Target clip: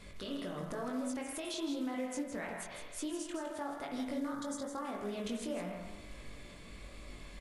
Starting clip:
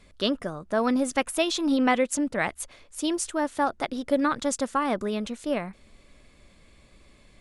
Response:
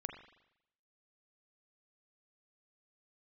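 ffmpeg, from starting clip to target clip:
-filter_complex "[0:a]acompressor=threshold=-37dB:ratio=4,asettb=1/sr,asplit=3[a][b][c];[a]atrim=end=1.954[d];[b]atrim=start=1.95:end=3.54,asetpts=PTS-STARTPTS,afade=t=in:d=0.004:c=qsin,afade=t=out:st=1.586:d=0.004:c=qsin,highshelf=f=7.7k:g=-11.5[e];[c]atrim=start=3.536[f];[d][e]acrossfade=d=0.004:c1=hsin:c2=qsin[g];[g][f]acrossfade=d=0.004:c1=qsin:c2=hsin[h];[1:a]atrim=start_sample=2205[i];[h][i]afir=irnorm=-1:irlink=0,flanger=delay=19.5:depth=2.8:speed=1,alimiter=level_in=16.5dB:limit=-24dB:level=0:latency=1:release=248,volume=-16.5dB,acrusher=bits=6:mode=log:mix=0:aa=0.000001,asettb=1/sr,asplit=3[j][k][l];[j]atrim=end=4.194[m];[k]atrim=start=4.19:end=4.85,asetpts=PTS-STARTPTS,afade=t=in:d=0.004:c=qsin,afade=t=out:st=0.656:d=0.004:c=qsin,equalizer=f=2.6k:w=2.3:g=-13[n];[l]atrim=start=4.846[o];[m][n]acrossfade=d=0.004:c1=hsin:c2=qsin[p];[p][o]acrossfade=d=0.004:c1=qsin:c2=hsin,aecho=1:1:161:0.398,volume=10dB" -ar 48000 -c:a mp2 -b:a 96k

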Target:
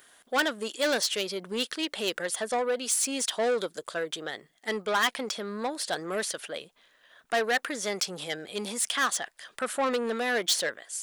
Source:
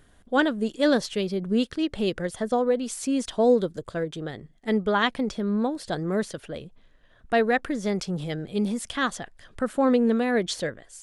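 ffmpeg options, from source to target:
-filter_complex "[0:a]asplit=2[a][b];[b]highpass=f=720:p=1,volume=19dB,asoftclip=type=tanh:threshold=-8dB[c];[a][c]amix=inputs=2:normalize=0,lowpass=f=2.9k:p=1,volume=-6dB,aemphasis=mode=production:type=riaa,volume=-8dB"

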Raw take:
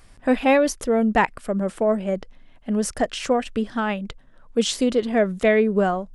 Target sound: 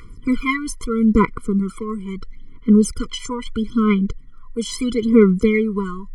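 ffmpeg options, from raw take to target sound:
-af "aphaser=in_gain=1:out_gain=1:delay=1.1:decay=0.76:speed=0.76:type=sinusoidal,aeval=exprs='val(0)+0.0355*sin(2*PI*1900*n/s)':c=same,afftfilt=real='re*eq(mod(floor(b*sr/1024/490),2),0)':imag='im*eq(mod(floor(b*sr/1024/490),2),0)':win_size=1024:overlap=0.75"

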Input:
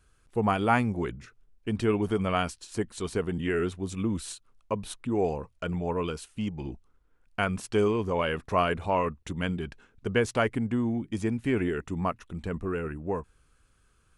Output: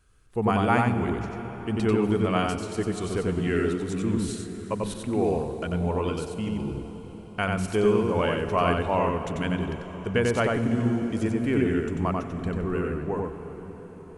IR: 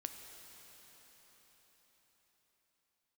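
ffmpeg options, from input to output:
-filter_complex "[0:a]asplit=2[a][b];[1:a]atrim=start_sample=2205,lowshelf=f=490:g=6.5,adelay=92[c];[b][c]afir=irnorm=-1:irlink=0,volume=-1dB[d];[a][d]amix=inputs=2:normalize=0"

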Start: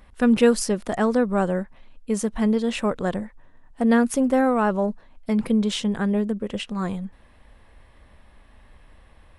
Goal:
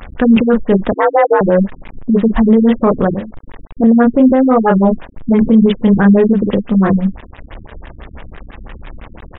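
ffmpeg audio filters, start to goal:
-filter_complex "[0:a]asplit=3[a][b][c];[a]afade=t=out:st=3.12:d=0.02[d];[b]acompressor=threshold=-31dB:ratio=20,afade=t=in:st=3.12:d=0.02,afade=t=out:st=3.82:d=0.02[e];[c]afade=t=in:st=3.82:d=0.02[f];[d][e][f]amix=inputs=3:normalize=0,asplit=2[g][h];[h]adelay=31,volume=-3.5dB[i];[g][i]amix=inputs=2:normalize=0,acrusher=bits=7:mix=0:aa=0.000001,asettb=1/sr,asplit=3[j][k][l];[j]atrim=end=0.944[m];[k]atrim=start=0.94:end=1.41,asetpts=PTS-STARTPTS,afade=t=in:d=0.004:c=qsin,afade=t=out:st=0.466:d=0.004:c=qsin,afreqshift=270[n];[l]atrim=start=1.406[o];[m][n]acrossfade=d=0.004:c1=hsin:c2=qsin[p];[p][o]acrossfade=d=0.004:c1=qsin:c2=hsin,alimiter=level_in=17.5dB:limit=-1dB:release=50:level=0:latency=1,afftfilt=real='re*lt(b*sr/1024,290*pow(3900/290,0.5+0.5*sin(2*PI*6*pts/sr)))':imag='im*lt(b*sr/1024,290*pow(3900/290,0.5+0.5*sin(2*PI*6*pts/sr)))':win_size=1024:overlap=0.75,volume=-1dB"

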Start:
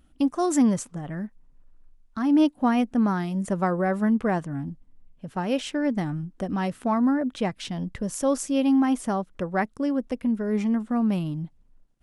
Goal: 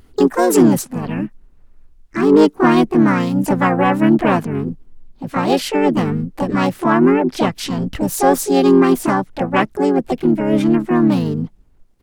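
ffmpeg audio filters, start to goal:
-filter_complex "[0:a]asplit=4[a][b][c][d];[b]asetrate=29433,aresample=44100,atempo=1.49831,volume=-10dB[e];[c]asetrate=58866,aresample=44100,atempo=0.749154,volume=-7dB[f];[d]asetrate=66075,aresample=44100,atempo=0.66742,volume=-2dB[g];[a][e][f][g]amix=inputs=4:normalize=0,acontrast=61,volume=1dB"

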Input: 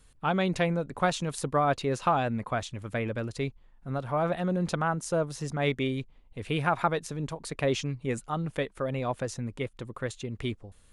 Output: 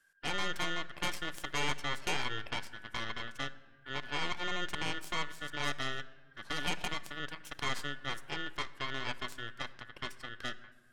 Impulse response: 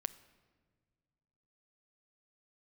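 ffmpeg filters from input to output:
-filter_complex "[0:a]aeval=exprs='val(0)*sin(2*PI*1600*n/s)':c=same,aeval=exprs='0.266*(cos(1*acos(clip(val(0)/0.266,-1,1)))-cos(1*PI/2))+0.106*(cos(3*acos(clip(val(0)/0.266,-1,1)))-cos(3*PI/2))+0.106*(cos(5*acos(clip(val(0)/0.266,-1,1)))-cos(5*PI/2))+0.0473*(cos(7*acos(clip(val(0)/0.266,-1,1)))-cos(7*PI/2))+0.0473*(cos(8*acos(clip(val(0)/0.266,-1,1)))-cos(8*PI/2))':c=same,alimiter=limit=-17dB:level=0:latency=1:release=45[a];[1:a]atrim=start_sample=2205[b];[a][b]afir=irnorm=-1:irlink=0,volume=-3.5dB"

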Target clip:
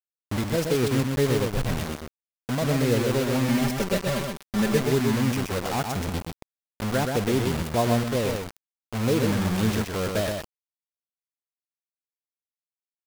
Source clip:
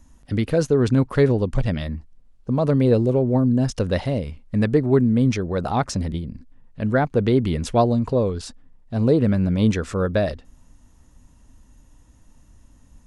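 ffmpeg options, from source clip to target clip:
-filter_complex "[0:a]acrusher=bits=3:mix=0:aa=0.000001,asettb=1/sr,asplit=3[a][b][c];[a]atrim=end=3.484[d];[b]atrim=start=3.48:end=4.8,asetpts=PTS-STARTPTS,afade=t=in:d=0.004:c=qsin,afade=t=out:st=1.316:d=0.004:c=qsin,aecho=1:1:5.1:0.79,atrim=end_sample=58212[e];[c]atrim=start=4.796[f];[d][e]acrossfade=d=0.004:c1=hsin:c2=qsin[g];[g][f]acrossfade=d=0.004:c1=qsin:c2=hsin,asplit=2[h][i];[i]aecho=0:1:126:0.596[j];[h][j]amix=inputs=2:normalize=0,volume=-6.5dB"

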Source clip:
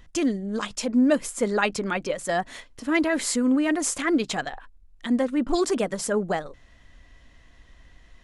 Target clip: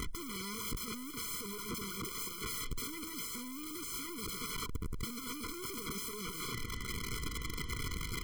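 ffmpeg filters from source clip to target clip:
-af "aeval=exprs='(tanh(79.4*val(0)+0.55)-tanh(0.55))/79.4':c=same,aeval=exprs='(mod(299*val(0)+1,2)-1)/299':c=same,afftfilt=real='re*eq(mod(floor(b*sr/1024/490),2),0)':imag='im*eq(mod(floor(b*sr/1024/490),2),0)':win_size=1024:overlap=0.75,volume=17.5dB"

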